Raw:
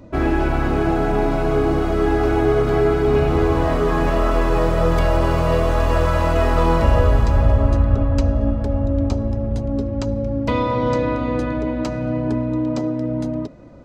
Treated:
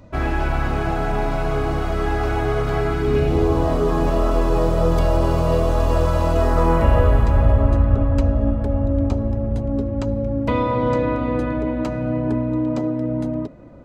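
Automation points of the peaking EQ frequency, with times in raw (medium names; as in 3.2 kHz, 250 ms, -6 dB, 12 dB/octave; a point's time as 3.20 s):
peaking EQ -8.5 dB 1.2 oct
2.81 s 330 Hz
3.49 s 1.9 kHz
6.35 s 1.9 kHz
6.88 s 5.4 kHz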